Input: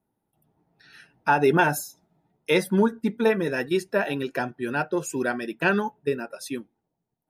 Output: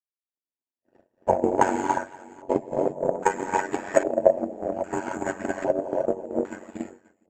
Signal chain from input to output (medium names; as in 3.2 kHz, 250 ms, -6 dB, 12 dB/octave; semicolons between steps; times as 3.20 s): comb filter that takes the minimum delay 3.2 ms; on a send: delay 530 ms -18.5 dB; on the sum: gate -53 dBFS, range -35 dB; high-order bell 2.6 kHz -11.5 dB 2.7 oct; comb 6.6 ms, depth 57%; careless resampling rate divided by 6×, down filtered, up zero stuff; frequency weighting D; gated-style reverb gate 360 ms rising, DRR -1 dB; ring modulator 46 Hz; LFO low-pass square 0.62 Hz 600–1500 Hz; transient shaper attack +11 dB, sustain -2 dB; trim -4.5 dB